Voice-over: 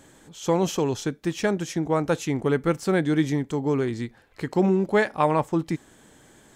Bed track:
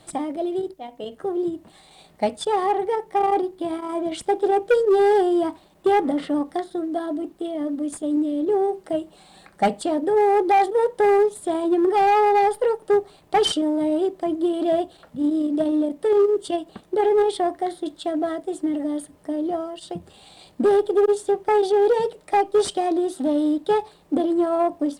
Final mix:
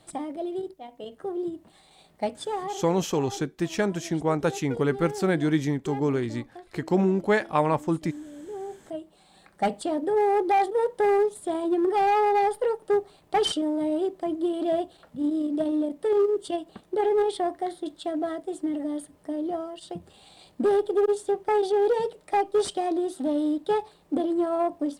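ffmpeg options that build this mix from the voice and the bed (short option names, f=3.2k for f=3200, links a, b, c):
-filter_complex "[0:a]adelay=2350,volume=-1.5dB[a];[1:a]volume=8dB,afade=t=out:st=2.35:d=0.54:silence=0.237137,afade=t=in:st=8.45:d=1.35:silence=0.199526[b];[a][b]amix=inputs=2:normalize=0"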